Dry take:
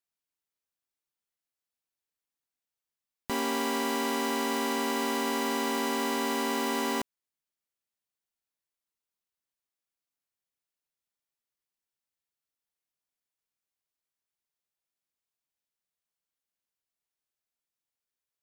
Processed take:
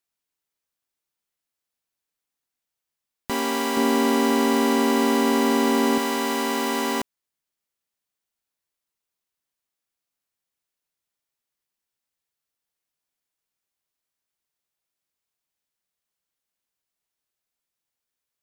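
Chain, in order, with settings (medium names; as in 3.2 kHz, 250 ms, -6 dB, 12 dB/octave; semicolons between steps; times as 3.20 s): 3.77–5.98 s: bass shelf 490 Hz +9 dB; trim +5 dB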